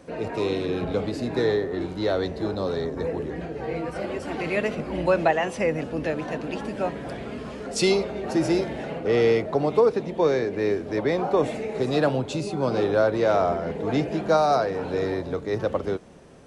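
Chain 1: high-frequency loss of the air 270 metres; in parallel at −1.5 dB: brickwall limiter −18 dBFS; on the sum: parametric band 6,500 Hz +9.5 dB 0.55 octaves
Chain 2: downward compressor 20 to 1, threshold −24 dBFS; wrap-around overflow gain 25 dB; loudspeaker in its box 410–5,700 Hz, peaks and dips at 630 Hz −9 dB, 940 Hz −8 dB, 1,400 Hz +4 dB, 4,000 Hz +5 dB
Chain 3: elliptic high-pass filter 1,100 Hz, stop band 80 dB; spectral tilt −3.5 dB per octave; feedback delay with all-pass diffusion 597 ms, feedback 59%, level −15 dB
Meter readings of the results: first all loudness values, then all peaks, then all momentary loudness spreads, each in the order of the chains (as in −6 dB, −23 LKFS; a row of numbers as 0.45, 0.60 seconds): −22.0, −32.0, −39.0 LKFS; −8.0, −18.5, −18.5 dBFS; 8, 4, 12 LU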